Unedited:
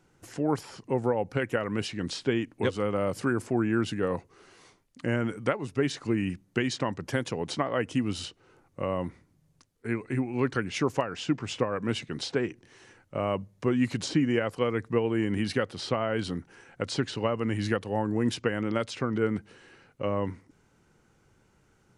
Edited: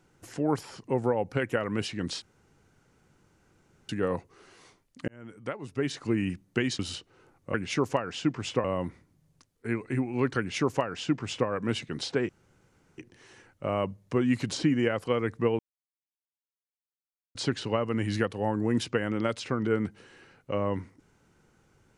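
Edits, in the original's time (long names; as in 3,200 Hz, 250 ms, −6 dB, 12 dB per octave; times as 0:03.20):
0:02.22–0:03.89: fill with room tone
0:05.08–0:06.11: fade in
0:06.79–0:08.09: remove
0:10.58–0:11.68: duplicate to 0:08.84
0:12.49: splice in room tone 0.69 s
0:15.10–0:16.86: silence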